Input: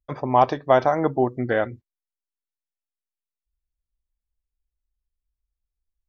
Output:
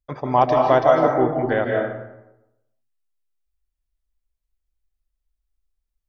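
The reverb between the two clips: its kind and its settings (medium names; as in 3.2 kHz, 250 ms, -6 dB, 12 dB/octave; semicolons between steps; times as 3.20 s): algorithmic reverb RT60 0.93 s, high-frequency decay 0.55×, pre-delay 115 ms, DRR 0.5 dB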